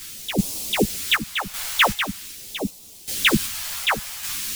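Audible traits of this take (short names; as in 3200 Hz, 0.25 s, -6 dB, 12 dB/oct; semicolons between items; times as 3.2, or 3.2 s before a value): a quantiser's noise floor 6-bit, dither triangular; phasing stages 2, 0.45 Hz, lowest notch 280–1500 Hz; random-step tremolo 2.6 Hz, depth 85%; a shimmering, thickened sound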